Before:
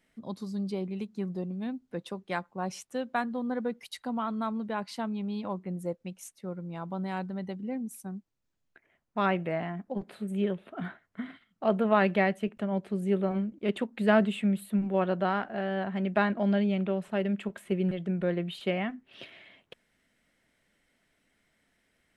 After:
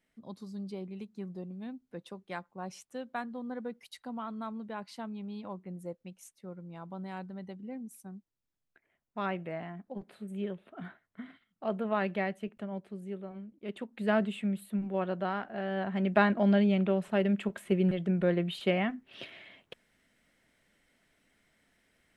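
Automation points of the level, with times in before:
0:12.61 −7 dB
0:13.34 −15 dB
0:14.09 −5 dB
0:15.44 −5 dB
0:16.14 +1.5 dB

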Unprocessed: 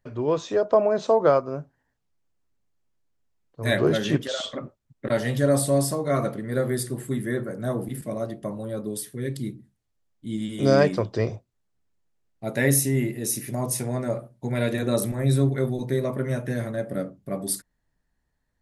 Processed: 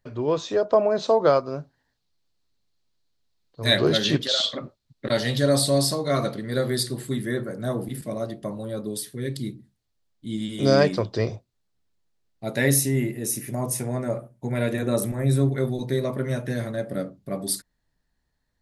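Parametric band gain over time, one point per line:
parametric band 4,200 Hz
0:00.89 +5.5 dB
0:01.53 +15 dB
0:06.90 +15 dB
0:07.46 +7 dB
0:12.68 +7 dB
0:13.22 −3.5 dB
0:15.31 −3.5 dB
0:15.74 +6.5 dB

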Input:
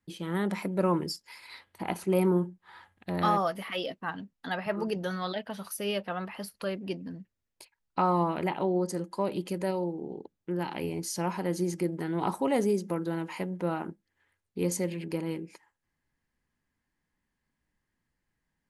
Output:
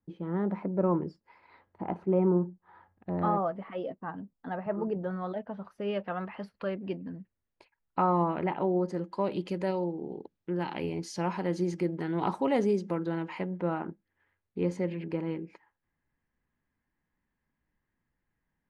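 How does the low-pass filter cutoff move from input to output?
0:05.61 1,000 Hz
0:06.04 2,100 Hz
0:08.72 2,100 Hz
0:09.33 4,400 Hz
0:12.92 4,400 Hz
0:13.70 2,300 Hz

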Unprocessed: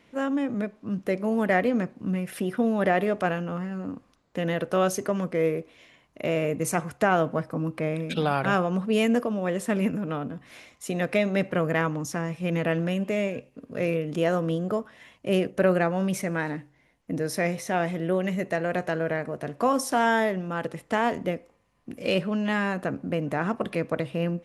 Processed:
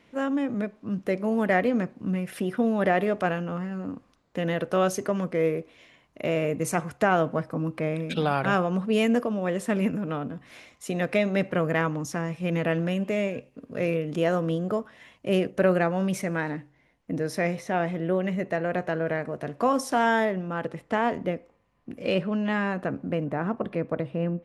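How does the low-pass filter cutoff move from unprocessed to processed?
low-pass filter 6 dB per octave
8,900 Hz
from 0:16.40 4,700 Hz
from 0:17.59 2,800 Hz
from 0:19.07 6,000 Hz
from 0:20.25 2,800 Hz
from 0:23.24 1,100 Hz

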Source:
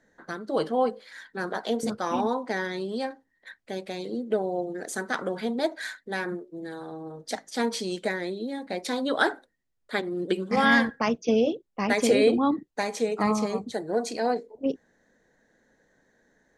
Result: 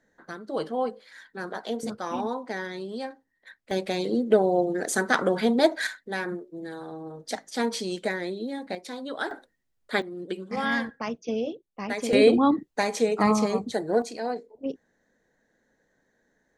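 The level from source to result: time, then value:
−3.5 dB
from 0:03.71 +6.5 dB
from 0:05.87 0 dB
from 0:08.75 −8 dB
from 0:09.31 +2.5 dB
from 0:10.02 −6.5 dB
from 0:12.13 +3 dB
from 0:14.02 −4.5 dB

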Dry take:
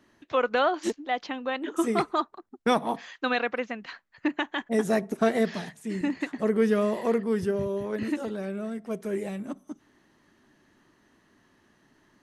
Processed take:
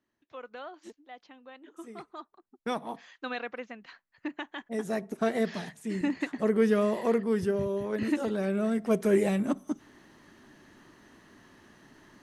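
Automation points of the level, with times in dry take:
0:02.06 −19 dB
0:02.68 −9 dB
0:04.63 −9 dB
0:05.77 −1 dB
0:07.88 −1 dB
0:08.85 +7 dB

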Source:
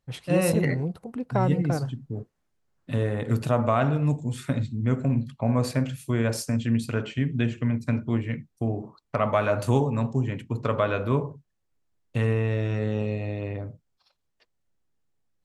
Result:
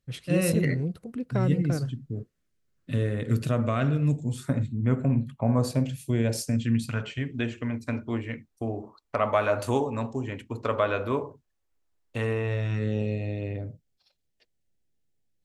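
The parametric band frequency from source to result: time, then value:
parametric band −13.5 dB 0.82 octaves
0:04.13 850 Hz
0:04.68 5,200 Hz
0:05.30 5,200 Hz
0:05.93 1,200 Hz
0:06.48 1,200 Hz
0:07.33 150 Hz
0:12.42 150 Hz
0:12.93 1,100 Hz

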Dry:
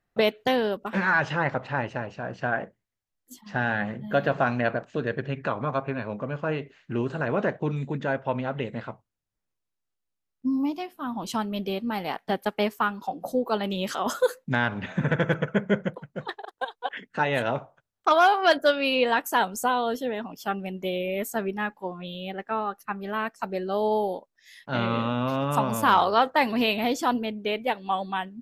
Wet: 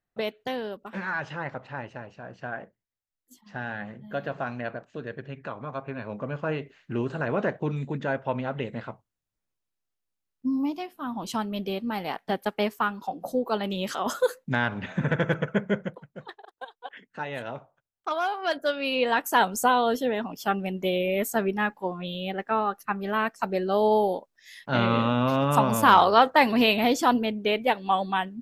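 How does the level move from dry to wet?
0:05.68 −8 dB
0:06.25 −1 dB
0:15.57 −1 dB
0:16.36 −9 dB
0:18.34 −9 dB
0:19.48 +3 dB

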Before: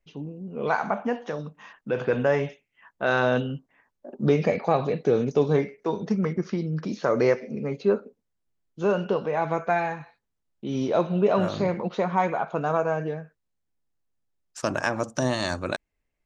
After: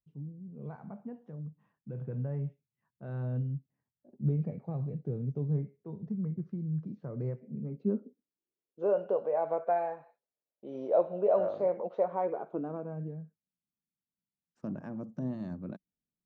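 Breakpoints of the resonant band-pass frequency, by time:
resonant band-pass, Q 3.2
0:07.36 130 Hz
0:08.97 580 Hz
0:12.08 580 Hz
0:13.00 190 Hz

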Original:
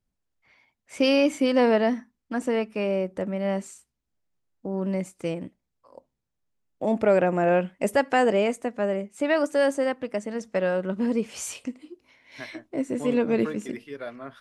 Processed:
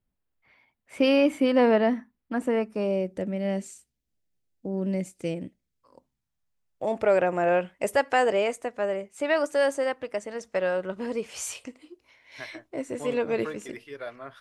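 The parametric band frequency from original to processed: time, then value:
parametric band −10.5 dB 0.99 octaves
0:02.41 6,300 Hz
0:03.08 1,100 Hz
0:05.44 1,100 Hz
0:06.92 220 Hz

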